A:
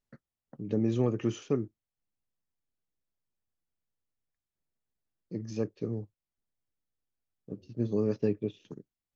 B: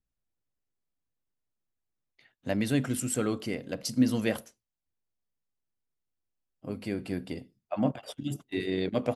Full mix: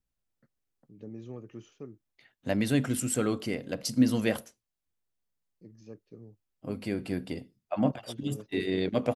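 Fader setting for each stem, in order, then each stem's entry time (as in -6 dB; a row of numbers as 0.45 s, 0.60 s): -15.0 dB, +1.0 dB; 0.30 s, 0.00 s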